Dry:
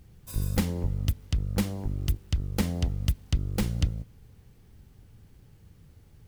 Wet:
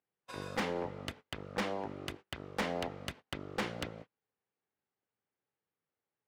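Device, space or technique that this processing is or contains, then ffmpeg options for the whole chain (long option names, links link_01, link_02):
walkie-talkie: -af "highpass=570,lowpass=2300,asoftclip=type=hard:threshold=-38.5dB,agate=range=-31dB:threshold=-58dB:ratio=16:detection=peak,volume=9.5dB"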